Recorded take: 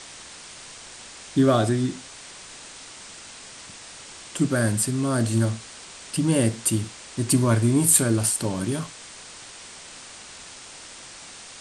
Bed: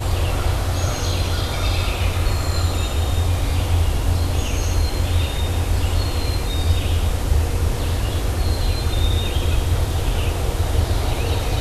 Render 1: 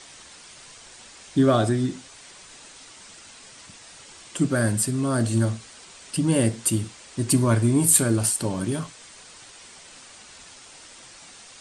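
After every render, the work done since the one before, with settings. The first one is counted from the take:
broadband denoise 6 dB, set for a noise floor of −43 dBFS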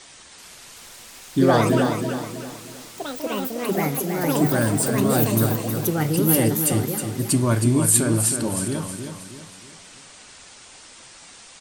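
delay with pitch and tempo change per echo 383 ms, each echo +5 semitones, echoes 3
repeating echo 317 ms, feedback 40%, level −7 dB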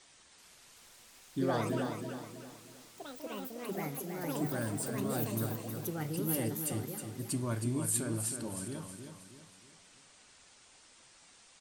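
level −15 dB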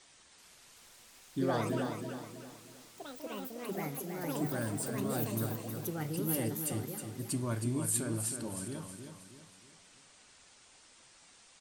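no processing that can be heard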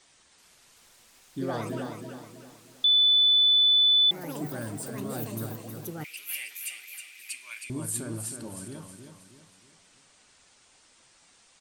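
0:02.84–0:04.11: beep over 3,490 Hz −17 dBFS
0:06.04–0:07.70: high-pass with resonance 2,400 Hz, resonance Q 12

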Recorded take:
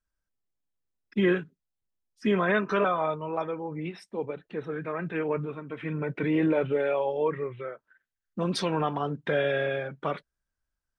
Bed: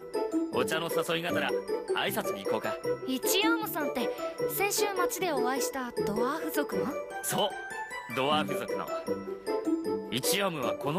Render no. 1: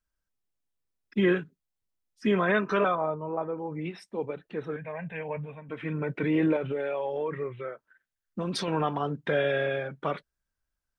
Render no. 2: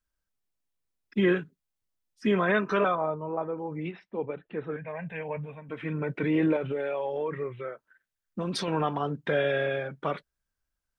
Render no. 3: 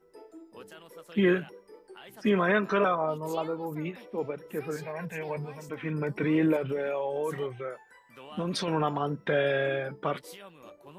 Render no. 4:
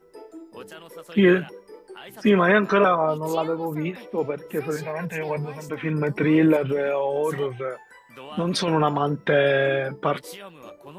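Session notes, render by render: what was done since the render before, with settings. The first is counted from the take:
0:02.95–0:03.58: low-pass filter 1,100 Hz; 0:04.76–0:05.69: phaser with its sweep stopped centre 1,300 Hz, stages 6; 0:06.56–0:08.68: downward compressor, threshold −26 dBFS
0:03.91–0:04.88: low-pass filter 3,200 Hz 24 dB per octave
mix in bed −19 dB
level +7 dB

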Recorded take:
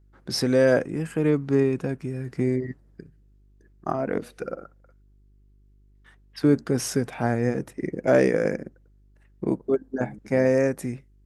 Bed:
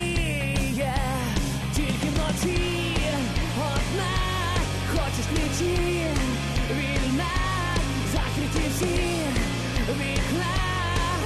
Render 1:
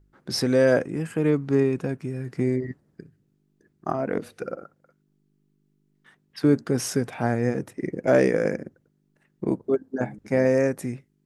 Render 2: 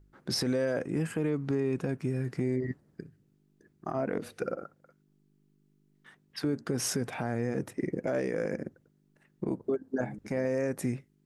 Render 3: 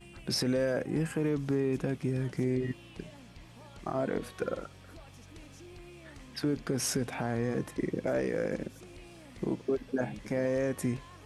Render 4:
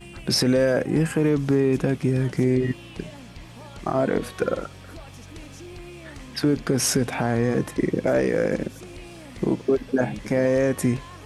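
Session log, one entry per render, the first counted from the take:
hum removal 50 Hz, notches 2
downward compressor 5 to 1, threshold −23 dBFS, peak gain reduction 9 dB; brickwall limiter −20.5 dBFS, peak gain reduction 8.5 dB
mix in bed −25.5 dB
level +9.5 dB

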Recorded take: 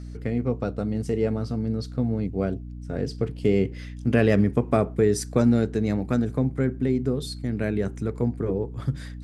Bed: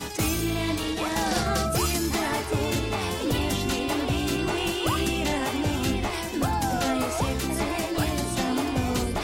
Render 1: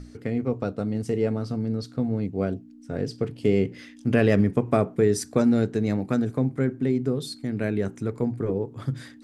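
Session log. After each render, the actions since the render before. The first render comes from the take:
mains-hum notches 60/120/180 Hz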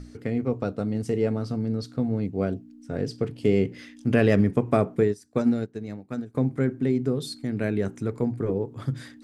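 0:05.03–0:06.35: expander for the loud parts 2.5 to 1, over −30 dBFS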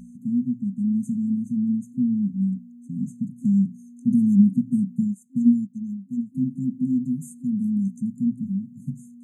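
brick-wall band-stop 260–6,200 Hz
low shelf with overshoot 130 Hz −13 dB, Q 3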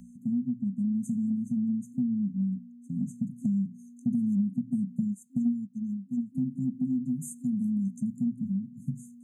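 downward compressor 5 to 1, threshold −26 dBFS, peak gain reduction 14 dB
multiband upward and downward expander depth 40%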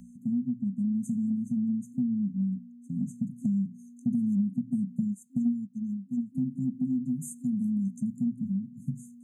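no processing that can be heard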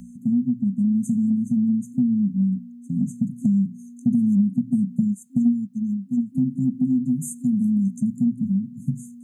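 level +8 dB

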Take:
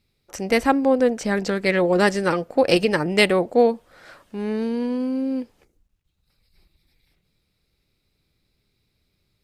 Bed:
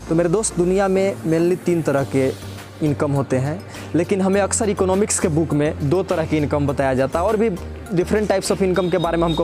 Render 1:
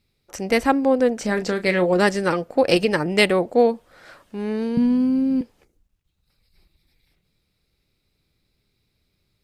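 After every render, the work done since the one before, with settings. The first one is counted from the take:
0:01.16–0:01.94: double-tracking delay 33 ms −11 dB
0:04.77–0:05.41: low shelf with overshoot 250 Hz +13.5 dB, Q 3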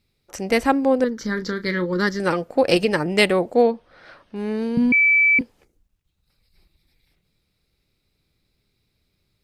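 0:01.04–0:02.20: phaser with its sweep stopped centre 2,600 Hz, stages 6
0:03.62–0:04.36: Savitzky-Golay smoothing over 15 samples
0:04.92–0:05.39: beep over 2,310 Hz −12.5 dBFS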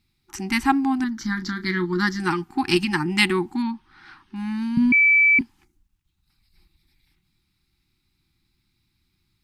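brick-wall band-stop 380–760 Hz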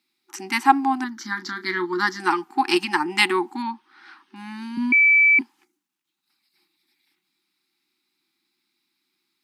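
high-pass filter 280 Hz 24 dB per octave
dynamic equaliser 900 Hz, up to +7 dB, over −40 dBFS, Q 1.5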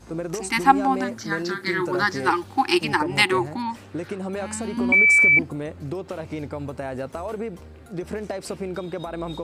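mix in bed −12.5 dB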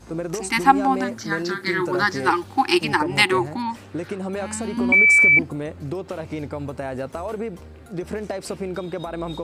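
level +1.5 dB
brickwall limiter −1 dBFS, peak gain reduction 1.5 dB

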